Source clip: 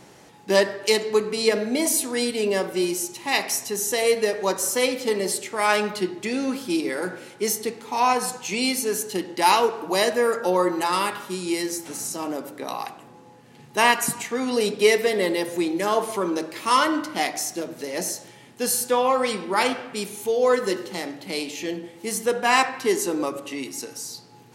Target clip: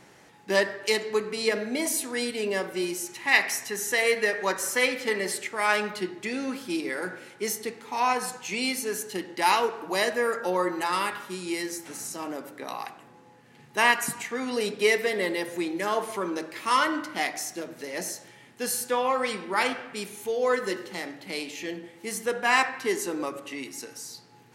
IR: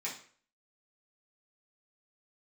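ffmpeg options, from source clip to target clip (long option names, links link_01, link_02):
-af "asetnsamples=nb_out_samples=441:pad=0,asendcmd='3.06 equalizer g 13;5.47 equalizer g 6',equalizer=frequency=1800:width_type=o:width=1.1:gain=6,volume=-6dB"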